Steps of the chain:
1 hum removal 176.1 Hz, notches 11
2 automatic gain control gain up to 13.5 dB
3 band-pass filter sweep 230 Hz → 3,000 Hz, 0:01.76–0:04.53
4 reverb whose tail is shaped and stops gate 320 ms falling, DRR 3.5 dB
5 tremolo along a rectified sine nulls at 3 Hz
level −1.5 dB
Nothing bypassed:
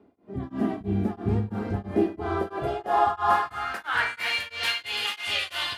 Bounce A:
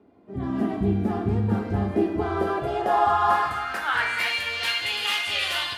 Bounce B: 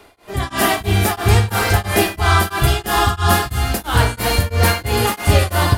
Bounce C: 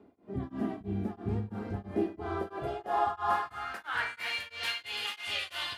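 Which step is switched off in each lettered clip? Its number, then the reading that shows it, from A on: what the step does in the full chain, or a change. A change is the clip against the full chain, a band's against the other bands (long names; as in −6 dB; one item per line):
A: 5, change in crest factor −2.0 dB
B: 3, 125 Hz band +9.0 dB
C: 2, change in integrated loudness −7.5 LU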